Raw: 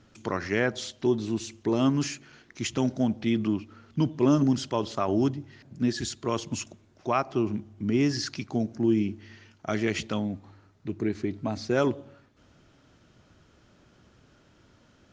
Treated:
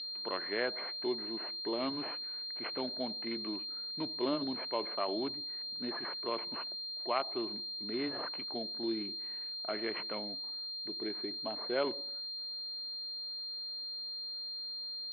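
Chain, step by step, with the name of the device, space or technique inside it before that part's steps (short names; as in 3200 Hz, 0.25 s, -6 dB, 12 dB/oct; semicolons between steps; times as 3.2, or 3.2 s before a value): toy sound module (decimation joined by straight lines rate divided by 8×; pulse-width modulation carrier 4200 Hz; speaker cabinet 500–4100 Hz, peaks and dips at 800 Hz -3 dB, 1300 Hz -3 dB, 2100 Hz +5 dB, 3000 Hz +6 dB); gain -3.5 dB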